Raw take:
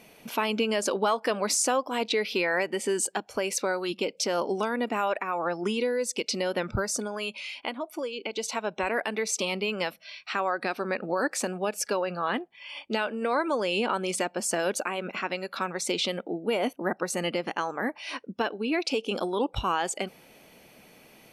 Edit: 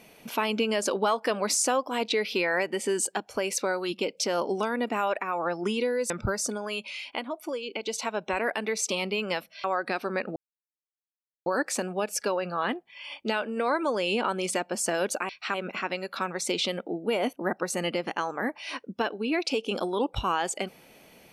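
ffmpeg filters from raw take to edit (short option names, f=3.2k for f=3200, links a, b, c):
-filter_complex "[0:a]asplit=6[a][b][c][d][e][f];[a]atrim=end=6.102[g];[b]atrim=start=6.598:end=10.142[h];[c]atrim=start=10.388:end=11.11,asetpts=PTS-STARTPTS,afade=t=out:st=0.718:d=0.004:c=hsin,apad=pad_dur=1.1[i];[d]atrim=start=11.11:end=14.942,asetpts=PTS-STARTPTS,afade=t=in:d=0.004:c=hsin[j];[e]atrim=start=10.138:end=10.392[k];[f]atrim=start=14.938[l];[g][h]acrossfade=d=0.004:c1=hsin:c2=hsin[m];[i][j]concat=n=2:v=0:a=1[n];[m][n]acrossfade=d=0.004:c1=hsin:c2=hsin[o];[o][k]acrossfade=d=0.004:c1=hsin:c2=hsin[p];[p][l]acrossfade=d=0.004:c1=hsin:c2=hsin"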